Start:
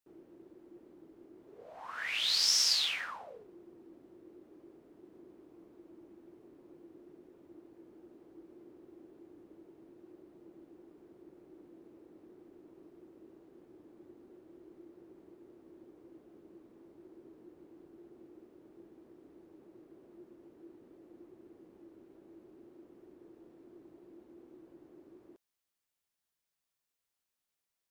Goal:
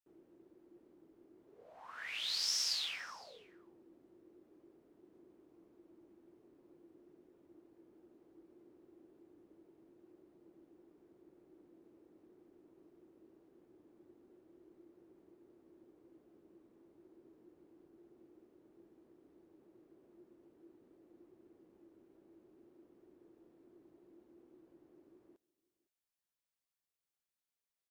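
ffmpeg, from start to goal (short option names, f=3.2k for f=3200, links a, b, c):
-af "aecho=1:1:511:0.0668,volume=-7.5dB"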